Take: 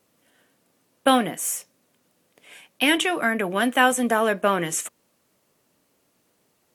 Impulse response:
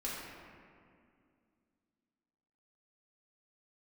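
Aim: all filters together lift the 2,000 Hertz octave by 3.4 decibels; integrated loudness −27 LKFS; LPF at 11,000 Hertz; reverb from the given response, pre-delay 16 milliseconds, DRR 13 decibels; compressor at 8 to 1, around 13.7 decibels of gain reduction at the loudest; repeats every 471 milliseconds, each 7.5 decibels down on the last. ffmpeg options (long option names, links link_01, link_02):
-filter_complex "[0:a]lowpass=11000,equalizer=frequency=2000:width_type=o:gain=4.5,acompressor=threshold=-25dB:ratio=8,aecho=1:1:471|942|1413|1884|2355:0.422|0.177|0.0744|0.0312|0.0131,asplit=2[link_01][link_02];[1:a]atrim=start_sample=2205,adelay=16[link_03];[link_02][link_03]afir=irnorm=-1:irlink=0,volume=-16dB[link_04];[link_01][link_04]amix=inputs=2:normalize=0,volume=3dB"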